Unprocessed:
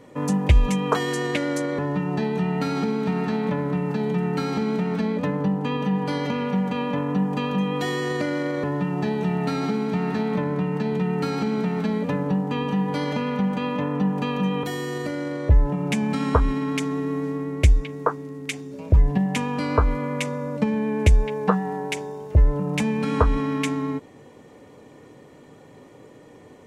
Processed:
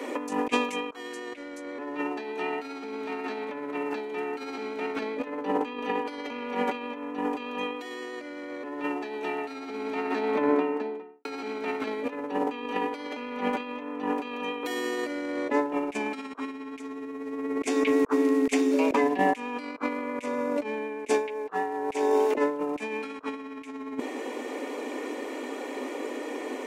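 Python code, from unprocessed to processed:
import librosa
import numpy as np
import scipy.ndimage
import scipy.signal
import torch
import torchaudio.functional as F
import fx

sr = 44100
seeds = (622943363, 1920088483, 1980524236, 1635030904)

y = fx.studio_fade_out(x, sr, start_s=9.66, length_s=1.59)
y = scipy.signal.sosfilt(scipy.signal.cheby1(6, 1.0, 250.0, 'highpass', fs=sr, output='sos'), y)
y = fx.peak_eq(y, sr, hz=2400.0, db=6.0, octaves=0.47)
y = fx.over_compress(y, sr, threshold_db=-35.0, ratio=-0.5)
y = F.gain(torch.from_numpy(y), 6.5).numpy()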